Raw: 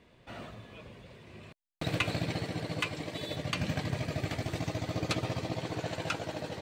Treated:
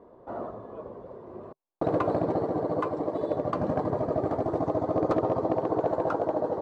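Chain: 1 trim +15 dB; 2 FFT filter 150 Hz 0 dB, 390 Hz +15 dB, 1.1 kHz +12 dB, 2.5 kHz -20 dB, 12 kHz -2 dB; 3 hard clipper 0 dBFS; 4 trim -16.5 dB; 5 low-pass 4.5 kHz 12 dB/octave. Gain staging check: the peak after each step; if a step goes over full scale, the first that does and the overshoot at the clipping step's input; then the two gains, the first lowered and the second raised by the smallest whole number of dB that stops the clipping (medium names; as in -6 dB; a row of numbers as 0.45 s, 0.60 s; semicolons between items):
+0.5 dBFS, +4.0 dBFS, 0.0 dBFS, -16.5 dBFS, -16.5 dBFS; step 1, 4.0 dB; step 1 +11 dB, step 4 -12.5 dB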